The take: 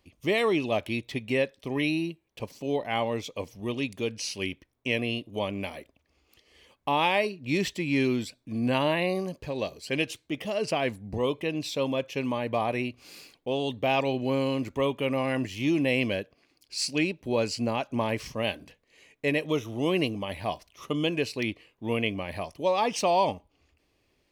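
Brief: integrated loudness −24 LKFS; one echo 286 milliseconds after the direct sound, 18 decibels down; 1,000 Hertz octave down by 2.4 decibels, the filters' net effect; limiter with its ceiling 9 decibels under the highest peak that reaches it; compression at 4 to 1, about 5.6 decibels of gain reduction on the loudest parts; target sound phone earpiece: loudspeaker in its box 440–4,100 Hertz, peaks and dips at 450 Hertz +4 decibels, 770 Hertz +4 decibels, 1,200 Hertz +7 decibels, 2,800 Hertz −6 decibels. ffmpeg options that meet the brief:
ffmpeg -i in.wav -af "equalizer=frequency=1000:width_type=o:gain=-8,acompressor=threshold=-29dB:ratio=4,alimiter=level_in=2dB:limit=-24dB:level=0:latency=1,volume=-2dB,highpass=440,equalizer=frequency=450:width_type=q:width=4:gain=4,equalizer=frequency=770:width_type=q:width=4:gain=4,equalizer=frequency=1200:width_type=q:width=4:gain=7,equalizer=frequency=2800:width_type=q:width=4:gain=-6,lowpass=frequency=4100:width=0.5412,lowpass=frequency=4100:width=1.3066,aecho=1:1:286:0.126,volume=15.5dB" out.wav

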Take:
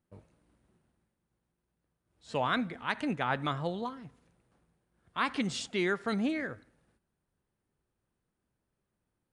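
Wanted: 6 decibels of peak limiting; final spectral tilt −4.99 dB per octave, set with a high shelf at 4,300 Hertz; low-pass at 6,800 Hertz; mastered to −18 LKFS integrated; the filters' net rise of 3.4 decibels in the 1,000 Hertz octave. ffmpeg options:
ffmpeg -i in.wav -af "lowpass=6800,equalizer=frequency=1000:width_type=o:gain=4,highshelf=frequency=4300:gain=3.5,volume=15dB,alimiter=limit=-4dB:level=0:latency=1" out.wav

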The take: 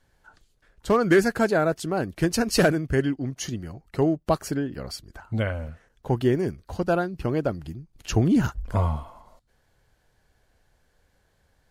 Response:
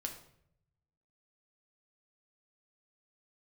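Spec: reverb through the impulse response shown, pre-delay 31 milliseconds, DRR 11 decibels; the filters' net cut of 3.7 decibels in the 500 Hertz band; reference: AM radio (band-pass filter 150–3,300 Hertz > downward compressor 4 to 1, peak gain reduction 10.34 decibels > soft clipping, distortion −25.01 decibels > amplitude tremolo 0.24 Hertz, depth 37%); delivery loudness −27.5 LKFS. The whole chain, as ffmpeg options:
-filter_complex "[0:a]equalizer=frequency=500:width_type=o:gain=-5,asplit=2[link_01][link_02];[1:a]atrim=start_sample=2205,adelay=31[link_03];[link_02][link_03]afir=irnorm=-1:irlink=0,volume=-10dB[link_04];[link_01][link_04]amix=inputs=2:normalize=0,highpass=150,lowpass=3300,acompressor=threshold=-27dB:ratio=4,asoftclip=threshold=-17.5dB,tremolo=f=0.24:d=0.37,volume=8dB"

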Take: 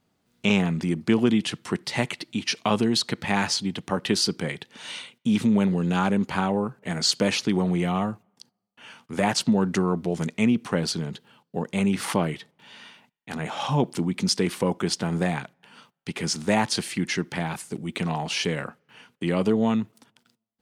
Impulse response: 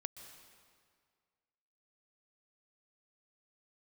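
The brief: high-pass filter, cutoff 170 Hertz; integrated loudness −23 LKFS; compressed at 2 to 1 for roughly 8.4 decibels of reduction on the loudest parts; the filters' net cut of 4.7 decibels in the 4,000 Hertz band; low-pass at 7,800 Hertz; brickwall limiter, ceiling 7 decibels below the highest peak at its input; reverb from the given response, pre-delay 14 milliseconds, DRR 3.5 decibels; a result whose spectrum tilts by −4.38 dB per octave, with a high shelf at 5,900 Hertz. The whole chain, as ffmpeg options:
-filter_complex "[0:a]highpass=170,lowpass=7800,equalizer=frequency=4000:width_type=o:gain=-8,highshelf=frequency=5900:gain=5.5,acompressor=threshold=-33dB:ratio=2,alimiter=limit=-23dB:level=0:latency=1,asplit=2[link_01][link_02];[1:a]atrim=start_sample=2205,adelay=14[link_03];[link_02][link_03]afir=irnorm=-1:irlink=0,volume=-0.5dB[link_04];[link_01][link_04]amix=inputs=2:normalize=0,volume=10dB"

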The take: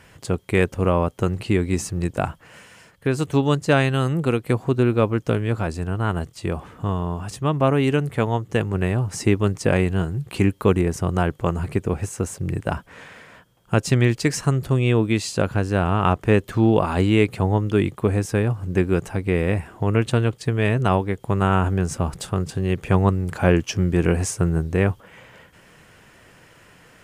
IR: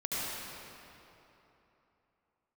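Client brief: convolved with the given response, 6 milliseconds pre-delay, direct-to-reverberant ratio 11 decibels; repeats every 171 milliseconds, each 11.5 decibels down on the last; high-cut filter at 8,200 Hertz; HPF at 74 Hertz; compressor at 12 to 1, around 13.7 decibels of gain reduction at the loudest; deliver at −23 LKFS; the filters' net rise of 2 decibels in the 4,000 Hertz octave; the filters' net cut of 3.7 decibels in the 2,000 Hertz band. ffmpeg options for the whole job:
-filter_complex "[0:a]highpass=74,lowpass=8200,equalizer=frequency=2000:width_type=o:gain=-6.5,equalizer=frequency=4000:width_type=o:gain=5.5,acompressor=threshold=-26dB:ratio=12,aecho=1:1:171|342|513:0.266|0.0718|0.0194,asplit=2[link_01][link_02];[1:a]atrim=start_sample=2205,adelay=6[link_03];[link_02][link_03]afir=irnorm=-1:irlink=0,volume=-17.5dB[link_04];[link_01][link_04]amix=inputs=2:normalize=0,volume=9dB"

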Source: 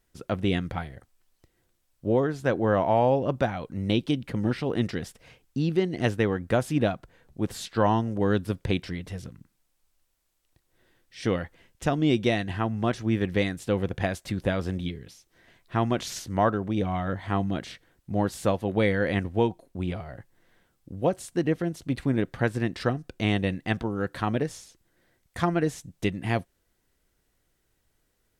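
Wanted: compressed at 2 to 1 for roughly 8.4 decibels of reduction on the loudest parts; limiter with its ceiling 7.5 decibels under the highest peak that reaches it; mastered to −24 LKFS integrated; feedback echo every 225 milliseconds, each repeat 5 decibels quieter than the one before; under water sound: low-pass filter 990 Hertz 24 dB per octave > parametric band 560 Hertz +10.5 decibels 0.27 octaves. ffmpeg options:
ffmpeg -i in.wav -af "acompressor=threshold=-34dB:ratio=2,alimiter=level_in=0.5dB:limit=-24dB:level=0:latency=1,volume=-0.5dB,lowpass=frequency=990:width=0.5412,lowpass=frequency=990:width=1.3066,equalizer=frequency=560:width_type=o:width=0.27:gain=10.5,aecho=1:1:225|450|675|900|1125|1350|1575:0.562|0.315|0.176|0.0988|0.0553|0.031|0.0173,volume=10dB" out.wav

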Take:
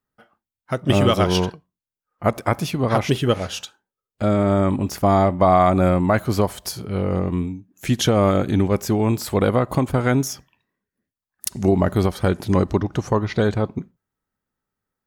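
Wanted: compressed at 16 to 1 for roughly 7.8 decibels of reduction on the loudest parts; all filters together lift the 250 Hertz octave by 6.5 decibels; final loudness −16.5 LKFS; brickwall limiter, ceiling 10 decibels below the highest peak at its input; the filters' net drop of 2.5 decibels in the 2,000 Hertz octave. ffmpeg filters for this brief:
ffmpeg -i in.wav -af "equalizer=frequency=250:width_type=o:gain=8.5,equalizer=frequency=2000:width_type=o:gain=-3.5,acompressor=threshold=-16dB:ratio=16,volume=9.5dB,alimiter=limit=-6dB:level=0:latency=1" out.wav

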